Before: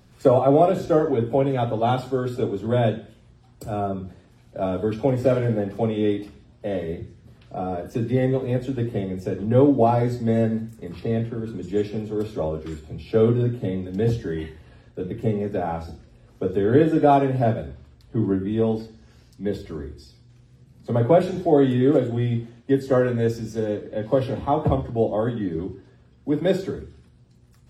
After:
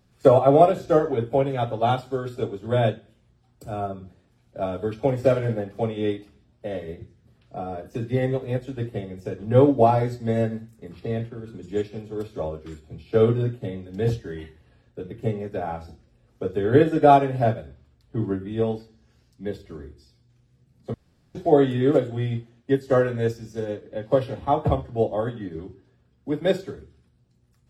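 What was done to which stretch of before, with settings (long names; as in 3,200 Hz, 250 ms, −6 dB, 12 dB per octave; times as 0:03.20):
0:20.94–0:21.35: fill with room tone
whole clip: notch filter 990 Hz, Q 24; dynamic equaliser 240 Hz, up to −5 dB, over −32 dBFS, Q 0.75; expander for the loud parts 1.5 to 1, over −41 dBFS; level +4.5 dB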